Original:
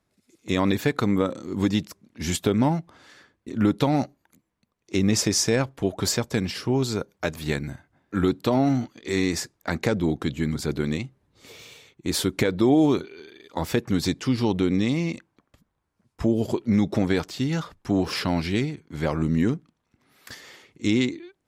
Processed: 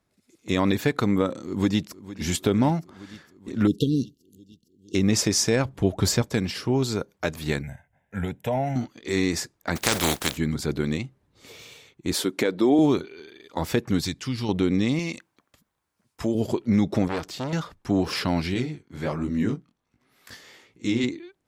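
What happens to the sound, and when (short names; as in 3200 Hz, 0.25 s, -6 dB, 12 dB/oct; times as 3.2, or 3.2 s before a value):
1.43–2.24 echo throw 0.46 s, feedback 75%, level -16 dB
3.67–4.95 brick-wall FIR band-stop 510–2700 Hz
5.65–6.22 low shelf 150 Hz +10 dB
7.62–8.76 fixed phaser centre 1200 Hz, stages 6
9.75–10.36 spectral contrast lowered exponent 0.31
12.13–12.79 Chebyshev high-pass 270 Hz
14.01–14.49 bell 450 Hz -9.5 dB 2.8 oct
14.99–16.35 tilt +2 dB/oct
17.08–17.53 core saturation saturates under 1900 Hz
18.54–21.04 chorus 1.3 Hz, delay 15.5 ms, depth 7.3 ms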